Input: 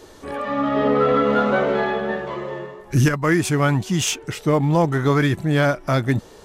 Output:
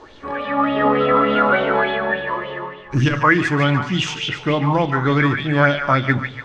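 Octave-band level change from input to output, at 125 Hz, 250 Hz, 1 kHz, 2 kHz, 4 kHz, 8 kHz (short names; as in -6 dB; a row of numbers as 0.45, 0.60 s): 0.0, +0.5, +5.0, +6.5, +4.0, -10.0 dB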